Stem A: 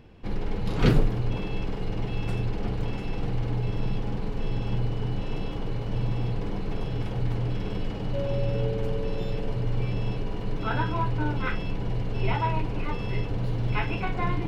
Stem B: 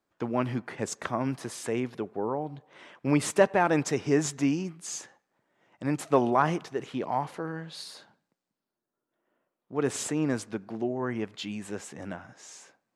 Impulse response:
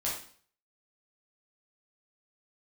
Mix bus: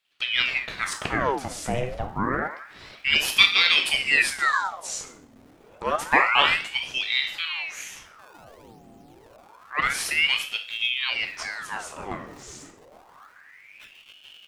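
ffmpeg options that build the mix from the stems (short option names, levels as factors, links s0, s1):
-filter_complex "[0:a]lowshelf=f=220:g=-6.5,acrusher=samples=27:mix=1:aa=0.000001:lfo=1:lforange=43.2:lforate=0.65,adelay=50,volume=0.15[s0];[1:a]volume=1.33,asplit=2[s1][s2];[s2]volume=0.596[s3];[2:a]atrim=start_sample=2205[s4];[s3][s4]afir=irnorm=-1:irlink=0[s5];[s0][s1][s5]amix=inputs=3:normalize=0,aeval=exprs='val(0)*sin(2*PI*1600*n/s+1600*0.85/0.28*sin(2*PI*0.28*n/s))':c=same"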